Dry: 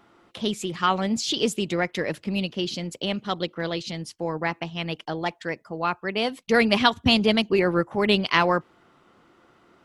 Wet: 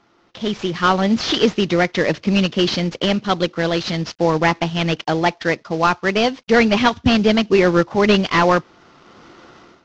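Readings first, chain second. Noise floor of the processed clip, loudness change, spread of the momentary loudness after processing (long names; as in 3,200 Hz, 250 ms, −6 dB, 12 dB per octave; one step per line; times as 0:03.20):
−57 dBFS, +7.0 dB, 6 LU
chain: variable-slope delta modulation 32 kbit/s
automatic gain control gain up to 15 dB
level −1 dB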